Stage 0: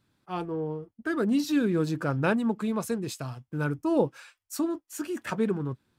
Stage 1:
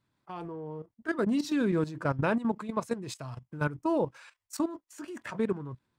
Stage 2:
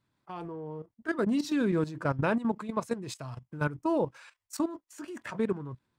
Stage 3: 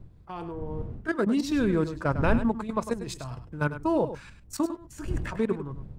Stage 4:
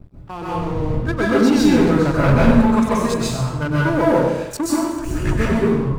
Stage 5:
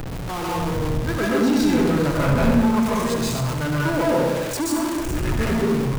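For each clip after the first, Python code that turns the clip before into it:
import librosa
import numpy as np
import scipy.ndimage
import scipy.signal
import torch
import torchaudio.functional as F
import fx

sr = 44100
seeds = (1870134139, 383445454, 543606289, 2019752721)

y1 = fx.graphic_eq_31(x, sr, hz=(125, 630, 1000, 2000, 12500), db=(3, 4, 7, 4, -11))
y1 = fx.level_steps(y1, sr, step_db=13)
y2 = y1
y3 = fx.dmg_wind(y2, sr, seeds[0], corner_hz=100.0, level_db=-39.0)
y3 = y3 + 10.0 ** (-11.5 / 20.0) * np.pad(y3, (int(101 * sr / 1000.0), 0))[:len(y3)]
y3 = y3 * 10.0 ** (2.5 / 20.0)
y4 = fx.leveller(y3, sr, passes=3)
y4 = fx.rev_plate(y4, sr, seeds[1], rt60_s=0.93, hf_ratio=0.8, predelay_ms=115, drr_db=-7.0)
y4 = y4 * 10.0 ** (-5.0 / 20.0)
y5 = y4 + 0.5 * 10.0 ** (-17.0 / 20.0) * np.sign(y4)
y5 = y5 + 10.0 ** (-10.5 / 20.0) * np.pad(y5, (int(71 * sr / 1000.0), 0))[:len(y5)]
y5 = y5 * 10.0 ** (-7.0 / 20.0)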